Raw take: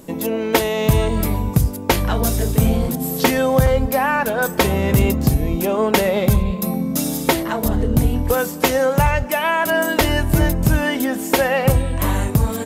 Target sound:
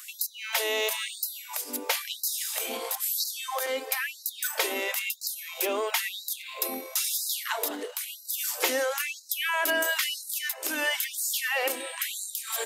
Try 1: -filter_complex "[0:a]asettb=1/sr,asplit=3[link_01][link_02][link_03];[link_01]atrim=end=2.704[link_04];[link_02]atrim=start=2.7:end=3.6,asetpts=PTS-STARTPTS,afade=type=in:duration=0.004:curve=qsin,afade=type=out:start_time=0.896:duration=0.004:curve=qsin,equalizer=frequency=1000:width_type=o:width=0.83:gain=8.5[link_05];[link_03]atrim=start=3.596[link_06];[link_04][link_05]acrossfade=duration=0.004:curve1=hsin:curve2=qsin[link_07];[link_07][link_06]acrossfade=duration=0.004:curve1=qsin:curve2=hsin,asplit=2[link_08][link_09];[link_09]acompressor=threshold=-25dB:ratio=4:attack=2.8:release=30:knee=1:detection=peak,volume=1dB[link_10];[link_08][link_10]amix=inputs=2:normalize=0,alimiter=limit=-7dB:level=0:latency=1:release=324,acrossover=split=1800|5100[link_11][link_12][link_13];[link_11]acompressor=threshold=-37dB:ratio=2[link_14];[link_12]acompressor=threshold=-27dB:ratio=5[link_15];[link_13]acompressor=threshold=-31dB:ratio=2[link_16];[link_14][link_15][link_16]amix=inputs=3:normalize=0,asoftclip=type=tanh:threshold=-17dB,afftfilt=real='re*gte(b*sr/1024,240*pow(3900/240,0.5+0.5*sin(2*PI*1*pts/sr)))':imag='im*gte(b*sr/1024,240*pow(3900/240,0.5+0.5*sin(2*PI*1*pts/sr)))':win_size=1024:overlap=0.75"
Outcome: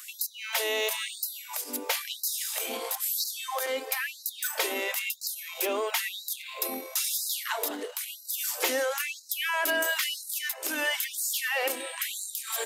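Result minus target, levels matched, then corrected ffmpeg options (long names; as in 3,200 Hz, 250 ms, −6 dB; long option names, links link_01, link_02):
soft clipping: distortion +15 dB
-filter_complex "[0:a]asettb=1/sr,asplit=3[link_01][link_02][link_03];[link_01]atrim=end=2.704[link_04];[link_02]atrim=start=2.7:end=3.6,asetpts=PTS-STARTPTS,afade=type=in:duration=0.004:curve=qsin,afade=type=out:start_time=0.896:duration=0.004:curve=qsin,equalizer=frequency=1000:width_type=o:width=0.83:gain=8.5[link_05];[link_03]atrim=start=3.596[link_06];[link_04][link_05]acrossfade=duration=0.004:curve1=hsin:curve2=qsin[link_07];[link_07][link_06]acrossfade=duration=0.004:curve1=qsin:curve2=hsin,asplit=2[link_08][link_09];[link_09]acompressor=threshold=-25dB:ratio=4:attack=2.8:release=30:knee=1:detection=peak,volume=1dB[link_10];[link_08][link_10]amix=inputs=2:normalize=0,alimiter=limit=-7dB:level=0:latency=1:release=324,acrossover=split=1800|5100[link_11][link_12][link_13];[link_11]acompressor=threshold=-37dB:ratio=2[link_14];[link_12]acompressor=threshold=-27dB:ratio=5[link_15];[link_13]acompressor=threshold=-31dB:ratio=2[link_16];[link_14][link_15][link_16]amix=inputs=3:normalize=0,asoftclip=type=tanh:threshold=-8dB,afftfilt=real='re*gte(b*sr/1024,240*pow(3900/240,0.5+0.5*sin(2*PI*1*pts/sr)))':imag='im*gte(b*sr/1024,240*pow(3900/240,0.5+0.5*sin(2*PI*1*pts/sr)))':win_size=1024:overlap=0.75"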